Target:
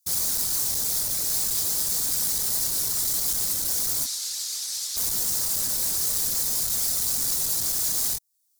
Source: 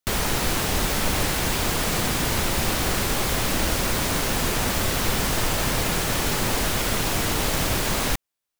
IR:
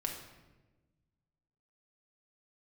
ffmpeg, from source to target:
-filter_complex "[0:a]alimiter=limit=-21.5dB:level=0:latency=1:release=397,asettb=1/sr,asplit=3[a][b][c];[a]atrim=end=4.044[d];[b]atrim=start=4.04:end=4.97,asetpts=PTS-STARTPTS,afade=t=in:d=0.004:c=qsin,afade=t=out:st=0.926:d=0.004:c=qsin,bandpass=f=4.2k:t=q:w=1.2:csg=0[e];[c]atrim=start=4.966[f];[d][e]acrossfade=d=0.004:c1=hsin:c2=qsin[g];[g][f]acrossfade=d=0.004:c1=qsin:c2=hsin,flanger=delay=20:depth=4.1:speed=0.94,afftfilt=real='hypot(re,im)*cos(2*PI*random(0))':imag='hypot(re,im)*sin(2*PI*random(1))':win_size=512:overlap=0.75,asoftclip=type=tanh:threshold=-40dB,aexciter=amount=9.8:drive=4.9:freq=4.1k,volume=3.5dB"

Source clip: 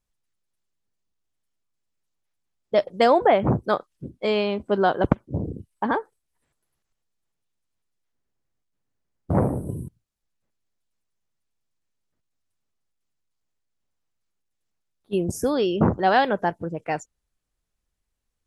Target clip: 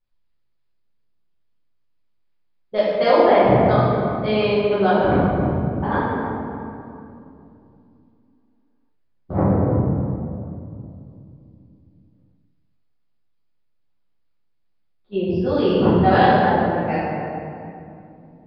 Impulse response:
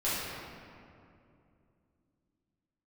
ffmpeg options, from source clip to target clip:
-filter_complex "[1:a]atrim=start_sample=2205,asetrate=41454,aresample=44100[a];[0:a][a]afir=irnorm=-1:irlink=0,aresample=11025,aresample=44100,volume=-5.5dB"

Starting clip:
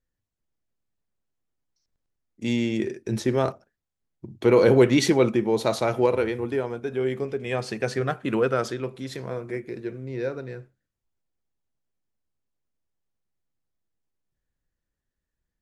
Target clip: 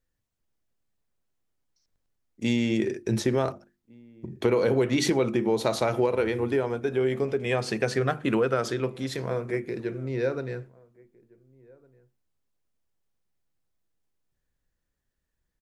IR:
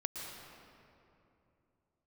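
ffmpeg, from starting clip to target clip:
-filter_complex "[0:a]bandreject=f=50:t=h:w=6,bandreject=f=100:t=h:w=6,bandreject=f=150:t=h:w=6,bandreject=f=200:t=h:w=6,bandreject=f=250:t=h:w=6,bandreject=f=300:t=h:w=6,bandreject=f=350:t=h:w=6,acompressor=threshold=-23dB:ratio=6,asplit=2[a][b];[b]adelay=1458,volume=-26dB,highshelf=f=4k:g=-32.8[c];[a][c]amix=inputs=2:normalize=0,volume=3dB"

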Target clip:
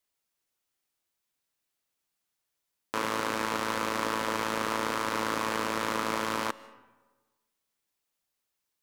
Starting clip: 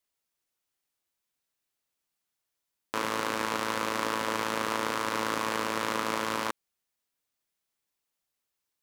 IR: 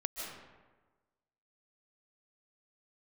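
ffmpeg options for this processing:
-filter_complex "[0:a]asoftclip=type=tanh:threshold=-13dB,asplit=2[a][b];[1:a]atrim=start_sample=2205[c];[b][c]afir=irnorm=-1:irlink=0,volume=-17dB[d];[a][d]amix=inputs=2:normalize=0"

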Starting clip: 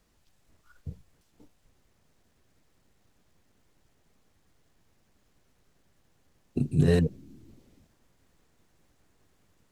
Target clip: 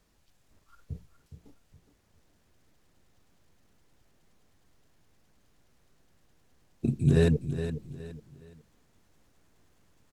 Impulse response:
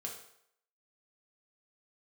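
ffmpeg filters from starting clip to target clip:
-filter_complex "[0:a]asplit=2[a][b];[b]aecho=0:1:400|800|1200:0.299|0.0955|0.0306[c];[a][c]amix=inputs=2:normalize=0,asetrate=42336,aresample=44100"

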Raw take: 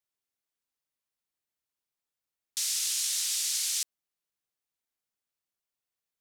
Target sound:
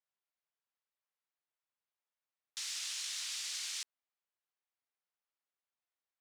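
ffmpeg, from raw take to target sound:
-af "highshelf=f=3.8k:g=-11.5,adynamicsmooth=sensitivity=6:basefreq=7.7k,highpass=600"

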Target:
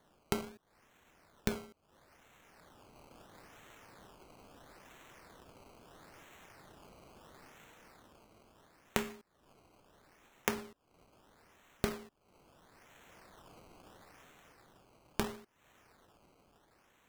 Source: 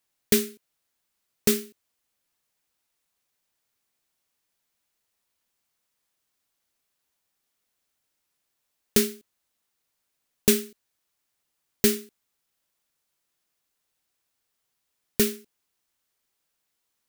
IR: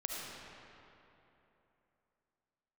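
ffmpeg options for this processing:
-af "dynaudnorm=f=290:g=7:m=11.5dB,acrusher=samples=17:mix=1:aa=0.000001:lfo=1:lforange=17:lforate=0.75,acompressor=threshold=-41dB:ratio=20,volume=9.5dB"

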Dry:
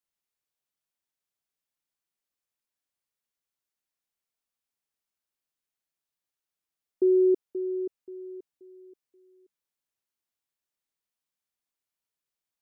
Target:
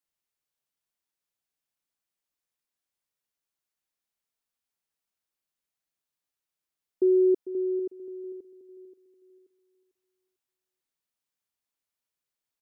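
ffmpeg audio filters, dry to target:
-af "aecho=1:1:448|896|1344:0.2|0.0539|0.0145"

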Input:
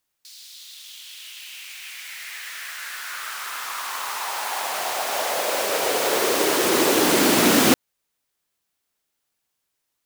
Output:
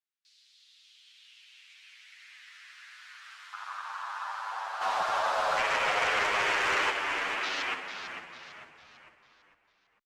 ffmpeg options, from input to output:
-filter_complex "[0:a]lowpass=4.4k,afwtdn=0.0501,highpass=1.4k,acompressor=threshold=-34dB:ratio=4,asplit=3[a][b][c];[a]afade=t=out:st=4.8:d=0.02[d];[b]aeval=exprs='0.0596*sin(PI/2*1.78*val(0)/0.0596)':c=same,afade=t=in:st=4.8:d=0.02,afade=t=out:st=6.89:d=0.02[e];[c]afade=t=in:st=6.89:d=0.02[f];[d][e][f]amix=inputs=3:normalize=0,asplit=6[g][h][i][j][k][l];[h]adelay=449,afreqshift=-57,volume=-8dB[m];[i]adelay=898,afreqshift=-114,volume=-15.3dB[n];[j]adelay=1347,afreqshift=-171,volume=-22.7dB[o];[k]adelay=1796,afreqshift=-228,volume=-30dB[p];[l]adelay=2245,afreqshift=-285,volume=-37.3dB[q];[g][m][n][o][p][q]amix=inputs=6:normalize=0,asplit=2[r][s];[s]adelay=9,afreqshift=-0.36[t];[r][t]amix=inputs=2:normalize=1,volume=5dB"

